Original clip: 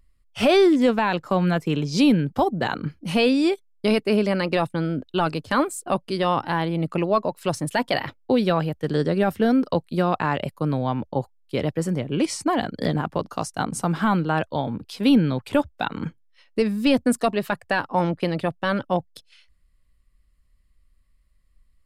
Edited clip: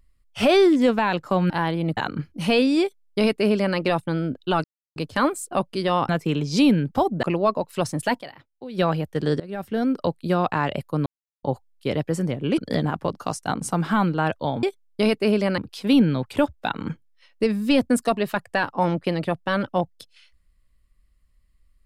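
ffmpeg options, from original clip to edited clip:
-filter_complex "[0:a]asplit=14[s0][s1][s2][s3][s4][s5][s6][s7][s8][s9][s10][s11][s12][s13];[s0]atrim=end=1.502[s14];[s1]atrim=start=6.438:end=6.912[s15];[s2]atrim=start=2.638:end=5.31,asetpts=PTS-STARTPTS,afade=t=out:st=2.668:d=0.004:c=hsin,apad=pad_dur=0.32[s16];[s3]atrim=start=5.31:end=6.442,asetpts=PTS-STARTPTS,afade=t=in:d=0.004:c=hsin[s17];[s4]atrim=start=1.498:end=2.642[s18];[s5]atrim=start=6.908:end=8.12,asetpts=PTS-STARTPTS,afade=t=out:st=0.952:d=0.26:c=exp:silence=0.133352[s19];[s6]atrim=start=8.12:end=8.21,asetpts=PTS-STARTPTS,volume=0.133[s20];[s7]atrim=start=8.21:end=9.08,asetpts=PTS-STARTPTS,afade=t=in:d=0.26:c=exp:silence=0.133352,afade=t=out:st=0.866:d=0.004:c=hsin:silence=0.0891251[s21];[s8]atrim=start=9.08:end=10.74,asetpts=PTS-STARTPTS,afade=t=in:d=1.03:c=qsin:silence=0.0891251,afade=t=out:st=1.656:d=0.004:c=hsin[s22];[s9]atrim=start=10.74:end=11.11,asetpts=PTS-STARTPTS,volume=0[s23];[s10]atrim=start=11.11:end=12.262,asetpts=PTS-STARTPTS,afade=t=in:d=0.004:c=hsin[s24];[s11]atrim=start=12.688:end=14.742[s25];[s12]atrim=start=3.478:end=4.432[s26];[s13]atrim=start=14.738[s27];[s14][s15]acrossfade=d=0.004:c1=hsin:c2=hsin[s28];[s16][s17]concat=n=2:v=0:a=1[s29];[s28][s29]acrossfade=d=0.004:c1=hsin:c2=hsin[s30];[s30][s18]acrossfade=d=0.004:c1=hsin:c2=hsin[s31];[s19][s20][s21][s22][s23][s24]concat=n=6:v=0:a=1[s32];[s31][s32]acrossfade=d=0.004:c1=hsin:c2=hsin[s33];[s33][s25]acrossfade=d=0.004:c1=hsin:c2=hsin[s34];[s34][s26]acrossfade=d=0.004:c1=hsin:c2=hsin[s35];[s35][s27]acrossfade=d=0.004:c1=hsin:c2=hsin"

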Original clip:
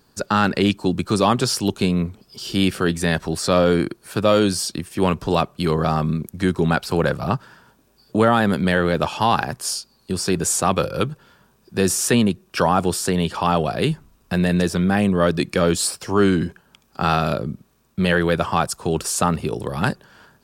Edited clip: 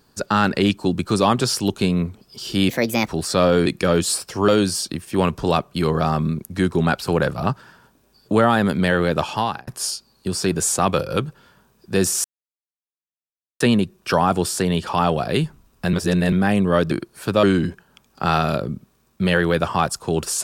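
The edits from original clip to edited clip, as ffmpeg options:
-filter_complex "[0:a]asplit=11[s0][s1][s2][s3][s4][s5][s6][s7][s8][s9][s10];[s0]atrim=end=2.694[s11];[s1]atrim=start=2.69:end=3.22,asetpts=PTS-STARTPTS,asetrate=59535,aresample=44100,atrim=end_sample=17313,asetpts=PTS-STARTPTS[s12];[s2]atrim=start=3.216:end=3.802[s13];[s3]atrim=start=15.388:end=16.212[s14];[s4]atrim=start=4.318:end=9.51,asetpts=PTS-STARTPTS,afade=t=out:st=4.812:d=0.38[s15];[s5]atrim=start=9.51:end=12.08,asetpts=PTS-STARTPTS,afade=t=in:d=0.004:c=hsin,afade=t=out:st=2.566:d=0.004:c=hsin,apad=pad_dur=1.36[s16];[s6]atrim=start=12.08:end=14.412,asetpts=PTS-STARTPTS,afade=t=in:d=0.004:c=hsin[s17];[s7]atrim=start=14.408:end=14.802,asetpts=PTS-STARTPTS,areverse[s18];[s8]atrim=start=14.798:end=15.392[s19];[s9]atrim=start=3.798:end=4.322[s20];[s10]atrim=start=16.208[s21];[s11][s12]acrossfade=d=0.004:c1=hsin:c2=hsin[s22];[s22][s13]acrossfade=d=0.004:c1=hsin:c2=hsin[s23];[s23][s14]acrossfade=d=0.004:c1=hsin:c2=hsin[s24];[s15][s16][s17]concat=n=3:v=0:a=1[s25];[s24][s25]acrossfade=d=0.004:c1=hsin:c2=hsin[s26];[s26][s18]acrossfade=d=0.004:c1=hsin:c2=hsin[s27];[s27][s19]acrossfade=d=0.004:c1=hsin:c2=hsin[s28];[s28][s20]acrossfade=d=0.004:c1=hsin:c2=hsin[s29];[s29][s21]acrossfade=d=0.004:c1=hsin:c2=hsin"

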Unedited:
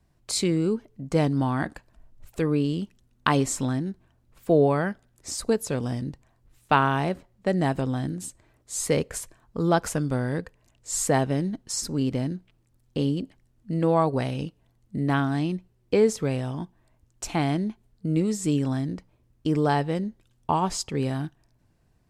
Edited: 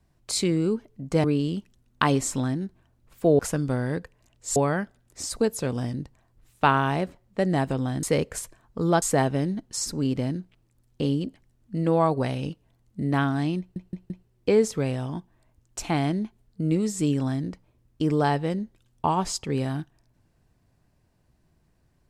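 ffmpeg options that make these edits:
-filter_complex "[0:a]asplit=9[s0][s1][s2][s3][s4][s5][s6][s7][s8];[s0]atrim=end=1.242[s9];[s1]atrim=start=2.488:end=4.642[s10];[s2]atrim=start=9.808:end=10.982[s11];[s3]atrim=start=4.638:end=8.112[s12];[s4]atrim=start=8.818:end=9.812[s13];[s5]atrim=start=10.978:end=15.722[s14];[s6]atrim=start=15.548:end=15.722[s15];[s7]atrim=start=15.548:end=15.722[s16];[s8]atrim=start=15.548[s17];[s9][s10]acrossfade=d=0.004:c1=hsin:c2=hsin[s18];[s18][s11]acrossfade=d=0.004:c1=hsin:c2=hsin[s19];[s19][s12]acrossfade=d=0.004:c1=hsin:c2=hsin[s20];[s20][s13]acrossfade=d=0.004:c1=hsin:c2=hsin[s21];[s21][s14]acrossfade=d=0.004:c1=hsin:c2=hsin[s22];[s22][s15]acrossfade=d=0.004:c1=hsin:c2=hsin[s23];[s23][s16]acrossfade=d=0.004:c1=hsin:c2=hsin[s24];[s24][s17]acrossfade=d=0.004:c1=hsin:c2=hsin"

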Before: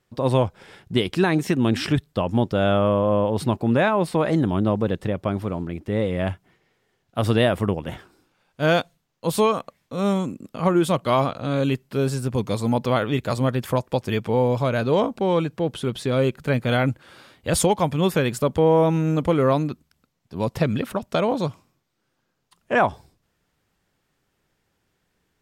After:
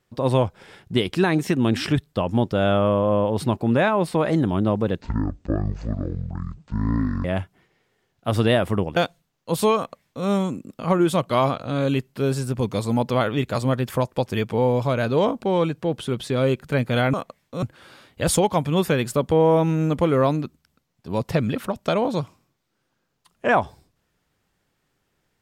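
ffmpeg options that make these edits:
-filter_complex "[0:a]asplit=6[s0][s1][s2][s3][s4][s5];[s0]atrim=end=5.014[s6];[s1]atrim=start=5.01:end=6.15,asetpts=PTS-STARTPTS,asetrate=22491,aresample=44100,atrim=end_sample=98576,asetpts=PTS-STARTPTS[s7];[s2]atrim=start=6.146:end=7.872[s8];[s3]atrim=start=8.718:end=16.892[s9];[s4]atrim=start=9.518:end=10.012[s10];[s5]atrim=start=16.888[s11];[s6][s7]acrossfade=d=0.004:c1=hsin:c2=hsin[s12];[s12][s8]acrossfade=d=0.004:c1=hsin:c2=hsin[s13];[s13][s9]acrossfade=d=0.004:c1=hsin:c2=hsin[s14];[s14][s10]acrossfade=d=0.004:c1=hsin:c2=hsin[s15];[s15][s11]acrossfade=d=0.004:c1=hsin:c2=hsin"

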